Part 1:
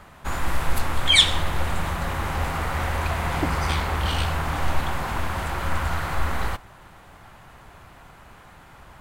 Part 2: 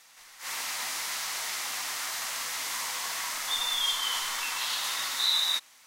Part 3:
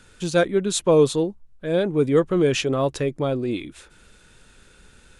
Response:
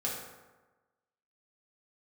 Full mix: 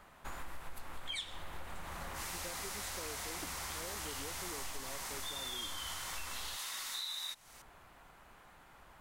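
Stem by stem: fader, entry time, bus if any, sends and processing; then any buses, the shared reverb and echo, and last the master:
-10.5 dB, 0.00 s, no send, peaking EQ 96 Hz -8 dB 1.9 oct
-2.5 dB, 1.75 s, no send, peaking EQ 9.2 kHz +3 dB
-16.5 dB, 2.10 s, no send, high-pass 200 Hz; compression, threshold -19 dBFS, peak gain reduction 8 dB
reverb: none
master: treble shelf 11 kHz +4.5 dB; compression 5:1, threshold -40 dBFS, peak gain reduction 17.5 dB

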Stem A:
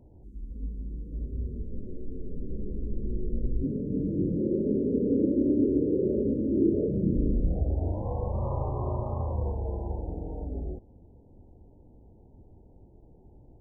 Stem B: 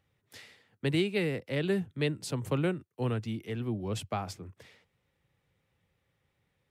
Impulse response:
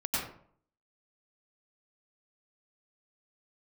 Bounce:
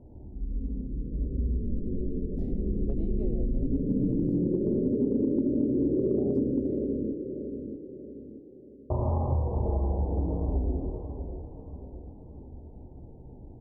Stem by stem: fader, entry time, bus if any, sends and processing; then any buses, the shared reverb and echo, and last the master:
+0.5 dB, 0.00 s, muted 6.50–8.90 s, send -3.5 dB, echo send -4 dB, low-pass 1 kHz; hum notches 50/100/150/200 Hz
3.38 s -2.5 dB -> 3.65 s -13 dB -> 6.14 s -13 dB -> 6.37 s -3 dB, 2.05 s, no send, no echo send, FFT filter 120 Hz 0 dB, 710 Hz +14 dB, 1.1 kHz -22 dB; compression 5:1, threshold -32 dBFS, peak gain reduction 14.5 dB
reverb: on, RT60 0.55 s, pre-delay 88 ms
echo: feedback delay 633 ms, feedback 44%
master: compression 6:1, threshold -23 dBFS, peak gain reduction 11.5 dB

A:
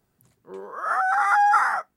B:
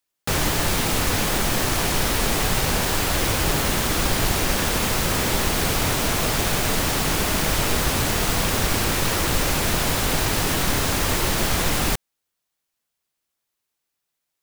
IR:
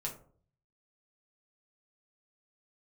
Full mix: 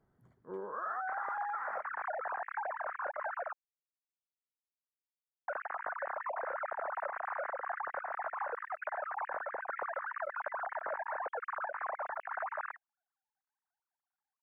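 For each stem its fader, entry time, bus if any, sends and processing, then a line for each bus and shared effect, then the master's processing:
-3.0 dB, 0.00 s, no send, compression 2:1, threshold -31 dBFS, peak gain reduction 9.5 dB; Savitzky-Golay filter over 41 samples
-8.5 dB, 0.80 s, muted 3.53–5.48 s, no send, formants replaced by sine waves; steep low-pass 1.7 kHz 48 dB/octave; random flutter of the level, depth 60%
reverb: none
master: compression 5:1, threshold -35 dBFS, peak gain reduction 9.5 dB

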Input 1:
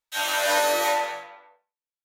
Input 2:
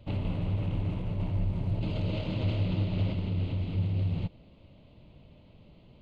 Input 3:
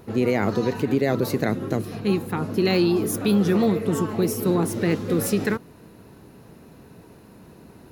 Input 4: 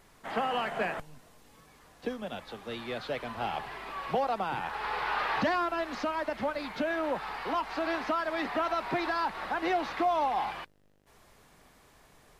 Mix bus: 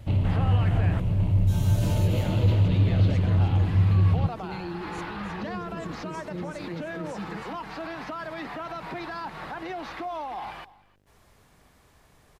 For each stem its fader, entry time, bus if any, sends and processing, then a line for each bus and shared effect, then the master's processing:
-12.5 dB, 1.35 s, bus A, no send, echo send -16 dB, peaking EQ 1.9 kHz -12.5 dB 1.4 oct
+3.0 dB, 0.00 s, no bus, no send, no echo send, saturation -21 dBFS, distortion -23 dB
-15.5 dB, 1.85 s, bus A, no send, echo send -12 dB, elliptic band-pass 130–7500 Hz; comb 6.2 ms, depth 95%; upward compressor, threshold -22 dBFS
-1.0 dB, 0.00 s, bus A, no send, echo send -23.5 dB, none
bus A: 0.0 dB, peak limiter -28 dBFS, peak gain reduction 9.5 dB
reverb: none
echo: delay 310 ms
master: peaking EQ 78 Hz +8 dB 1.9 oct

